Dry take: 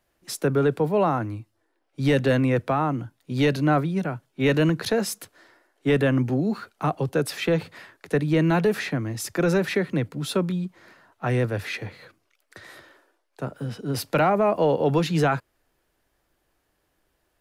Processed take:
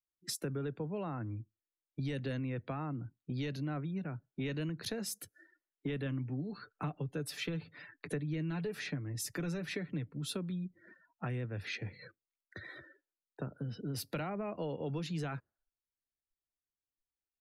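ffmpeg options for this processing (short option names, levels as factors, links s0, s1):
-filter_complex "[0:a]asettb=1/sr,asplit=3[s0][s1][s2];[s0]atrim=end=6.054[s3];[s1]atrim=start=6.05:end=10.13,asetpts=PTS-STARTPTS,afade=t=in:d=0.004:c=qsin,afade=t=out:st=4.076:d=0.004:c=qsin,aecho=1:1:6.8:0.44,atrim=end_sample=179928[s4];[s2]atrim=start=10.126[s5];[s3][s4]acrossfade=d=0.004:c1=hsin:c2=qsin[s6];[s6][s5]acrossfade=d=0.004:c1=qsin:c2=hsin,afftdn=nr=34:nf=-46,equalizer=f=800:t=o:w=2.5:g=-9.5,acompressor=threshold=0.00794:ratio=4,volume=1.5"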